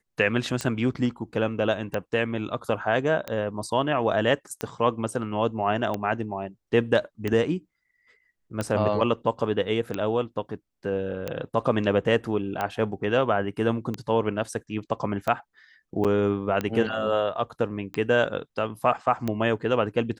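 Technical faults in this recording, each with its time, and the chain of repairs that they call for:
scratch tick 45 rpm −14 dBFS
0:16.04–0:16.05: drop-out 7.3 ms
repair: click removal
repair the gap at 0:16.04, 7.3 ms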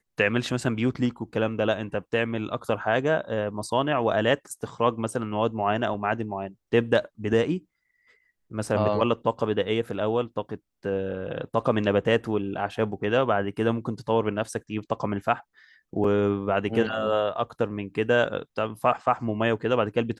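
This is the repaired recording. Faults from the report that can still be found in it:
none of them is left

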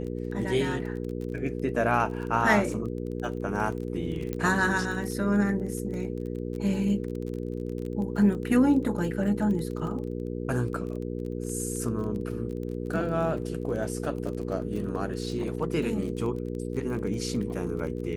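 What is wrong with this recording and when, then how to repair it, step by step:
surface crackle 26 per second −34 dBFS
mains hum 60 Hz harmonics 8 −33 dBFS
0:04.33: click −18 dBFS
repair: click removal
hum removal 60 Hz, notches 8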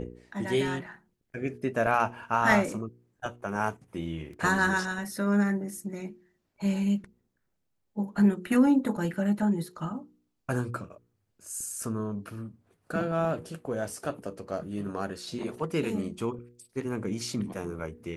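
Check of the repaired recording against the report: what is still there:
0:04.33: click

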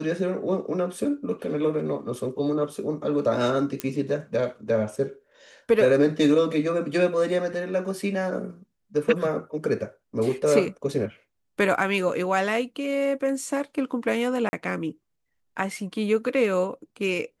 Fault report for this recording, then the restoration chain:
0:03.80: click −12 dBFS
0:14.49–0:14.53: drop-out 40 ms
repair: click removal
repair the gap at 0:14.49, 40 ms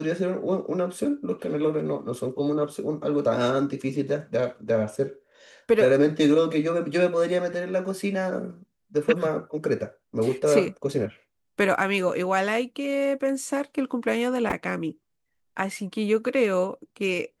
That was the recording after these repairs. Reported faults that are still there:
none of them is left

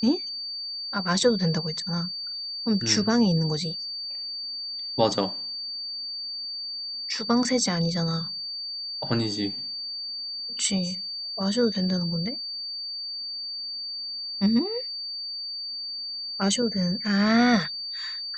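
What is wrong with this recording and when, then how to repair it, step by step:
whistle 4,600 Hz −31 dBFS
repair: notch filter 4,600 Hz, Q 30

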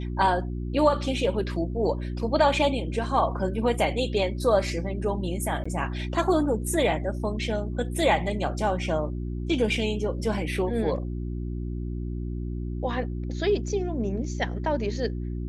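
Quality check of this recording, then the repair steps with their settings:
mains hum 60 Hz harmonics 6 −31 dBFS
0:05.64–0:05.66: drop-out 15 ms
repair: hum removal 60 Hz, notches 6
repair the gap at 0:05.64, 15 ms

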